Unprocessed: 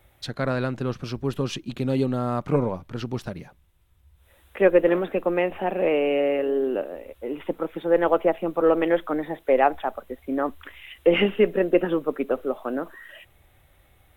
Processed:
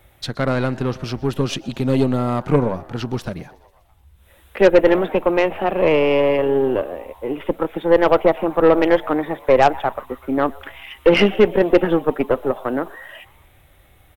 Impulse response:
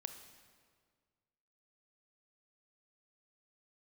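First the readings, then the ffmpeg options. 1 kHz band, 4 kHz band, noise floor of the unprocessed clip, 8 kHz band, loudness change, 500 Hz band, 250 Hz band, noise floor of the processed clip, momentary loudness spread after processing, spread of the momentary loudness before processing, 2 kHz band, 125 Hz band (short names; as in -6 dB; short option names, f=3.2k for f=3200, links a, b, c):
+6.5 dB, +7.0 dB, -60 dBFS, n/a, +6.0 dB, +5.5 dB, +6.0 dB, -53 dBFS, 13 LU, 13 LU, +6.0 dB, +6.0 dB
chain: -filter_complex "[0:a]asplit=6[a][b][c][d][e][f];[b]adelay=123,afreqshift=130,volume=-24dB[g];[c]adelay=246,afreqshift=260,volume=-27.7dB[h];[d]adelay=369,afreqshift=390,volume=-31.5dB[i];[e]adelay=492,afreqshift=520,volume=-35.2dB[j];[f]adelay=615,afreqshift=650,volume=-39dB[k];[a][g][h][i][j][k]amix=inputs=6:normalize=0,aeval=exprs='0.596*(cos(1*acos(clip(val(0)/0.596,-1,1)))-cos(1*PI/2))+0.0668*(cos(5*acos(clip(val(0)/0.596,-1,1)))-cos(5*PI/2))+0.0266*(cos(7*acos(clip(val(0)/0.596,-1,1)))-cos(7*PI/2))+0.0422*(cos(8*acos(clip(val(0)/0.596,-1,1)))-cos(8*PI/2))':c=same,volume=4dB"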